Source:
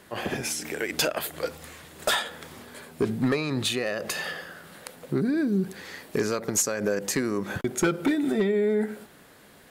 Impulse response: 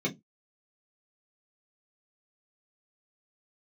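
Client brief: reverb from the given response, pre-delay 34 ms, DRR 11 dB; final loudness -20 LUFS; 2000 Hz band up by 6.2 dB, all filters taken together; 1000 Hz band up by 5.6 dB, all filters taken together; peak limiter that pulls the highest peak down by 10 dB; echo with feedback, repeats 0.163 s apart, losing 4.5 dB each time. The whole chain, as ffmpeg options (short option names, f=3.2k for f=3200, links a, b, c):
-filter_complex "[0:a]equalizer=f=1k:t=o:g=5.5,equalizer=f=2k:t=o:g=6,alimiter=limit=-20dB:level=0:latency=1,aecho=1:1:163|326|489|652|815|978|1141|1304|1467:0.596|0.357|0.214|0.129|0.0772|0.0463|0.0278|0.0167|0.01,asplit=2[a][b];[1:a]atrim=start_sample=2205,adelay=34[c];[b][c]afir=irnorm=-1:irlink=0,volume=-18.5dB[d];[a][d]amix=inputs=2:normalize=0,volume=7dB"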